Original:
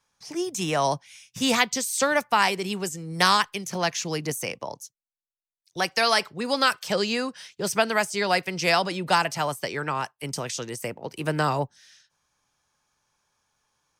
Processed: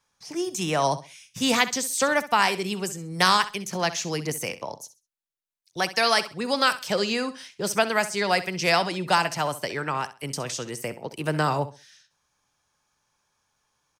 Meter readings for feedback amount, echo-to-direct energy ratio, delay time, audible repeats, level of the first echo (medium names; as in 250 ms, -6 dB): 25%, -14.0 dB, 65 ms, 2, -14.5 dB